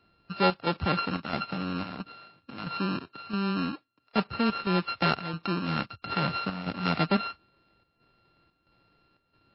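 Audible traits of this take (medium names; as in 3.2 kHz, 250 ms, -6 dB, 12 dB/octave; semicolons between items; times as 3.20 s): a buzz of ramps at a fixed pitch in blocks of 32 samples; chopped level 1.5 Hz, depth 60%, duty 75%; MP3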